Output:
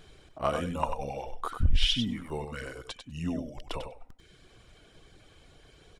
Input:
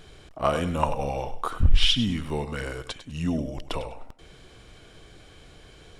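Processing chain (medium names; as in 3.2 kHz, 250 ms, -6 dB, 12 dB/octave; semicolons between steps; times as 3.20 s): reverb removal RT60 0.95 s; on a send: delay 96 ms -7.5 dB; on the sum: trim -5 dB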